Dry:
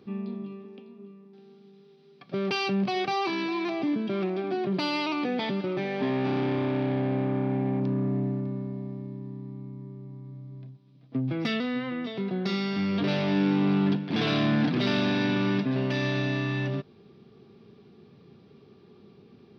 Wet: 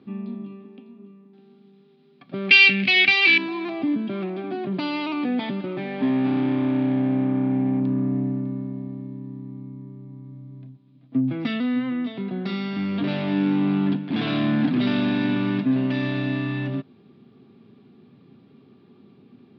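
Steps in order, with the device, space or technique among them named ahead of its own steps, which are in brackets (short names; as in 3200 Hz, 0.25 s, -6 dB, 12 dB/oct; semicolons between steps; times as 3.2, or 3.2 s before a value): 2.49–3.38 resonant high shelf 1500 Hz +14 dB, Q 3; guitar cabinet (speaker cabinet 98–4100 Hz, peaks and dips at 120 Hz +3 dB, 260 Hz +9 dB, 440 Hz -5 dB)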